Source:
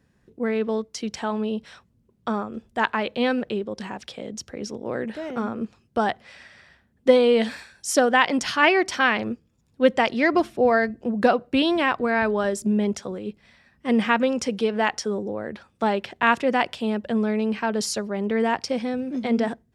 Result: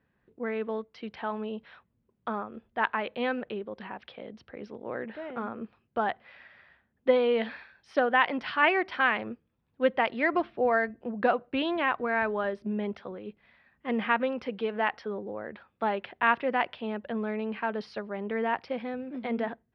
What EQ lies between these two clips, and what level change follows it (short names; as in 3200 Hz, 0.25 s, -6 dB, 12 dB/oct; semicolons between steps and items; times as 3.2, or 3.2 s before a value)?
polynomial smoothing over 15 samples; air absorption 420 m; low shelf 490 Hz -11.5 dB; 0.0 dB